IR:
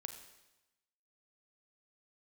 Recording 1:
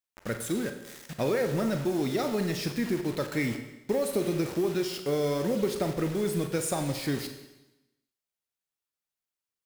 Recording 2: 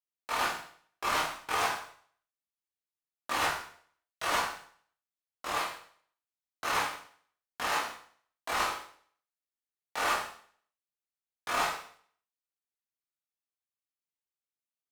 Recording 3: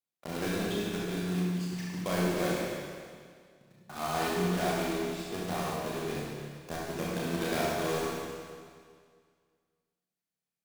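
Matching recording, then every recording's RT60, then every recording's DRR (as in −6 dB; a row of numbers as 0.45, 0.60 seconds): 1; 1.0, 0.55, 2.0 seconds; 6.0, −8.0, −5.5 decibels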